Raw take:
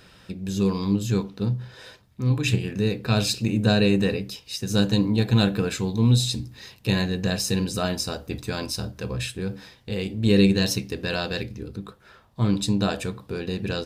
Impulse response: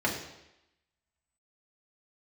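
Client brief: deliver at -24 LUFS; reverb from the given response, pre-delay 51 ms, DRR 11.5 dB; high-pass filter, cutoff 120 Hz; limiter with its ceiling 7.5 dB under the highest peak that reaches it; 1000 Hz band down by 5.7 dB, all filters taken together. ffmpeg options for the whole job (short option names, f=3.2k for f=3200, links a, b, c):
-filter_complex "[0:a]highpass=120,equalizer=f=1k:t=o:g=-8.5,alimiter=limit=-13.5dB:level=0:latency=1,asplit=2[a][b];[1:a]atrim=start_sample=2205,adelay=51[c];[b][c]afir=irnorm=-1:irlink=0,volume=-22dB[d];[a][d]amix=inputs=2:normalize=0,volume=2.5dB"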